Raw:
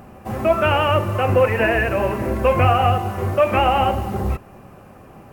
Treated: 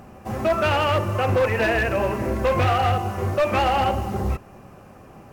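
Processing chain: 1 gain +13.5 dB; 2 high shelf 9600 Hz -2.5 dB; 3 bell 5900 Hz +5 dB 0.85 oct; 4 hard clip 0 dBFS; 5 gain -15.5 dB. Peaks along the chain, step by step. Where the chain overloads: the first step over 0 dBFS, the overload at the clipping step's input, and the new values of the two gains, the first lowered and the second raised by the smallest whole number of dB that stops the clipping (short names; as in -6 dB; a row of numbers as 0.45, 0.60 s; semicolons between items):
+9.5, +9.5, +9.5, 0.0, -15.5 dBFS; step 1, 9.5 dB; step 1 +3.5 dB, step 5 -5.5 dB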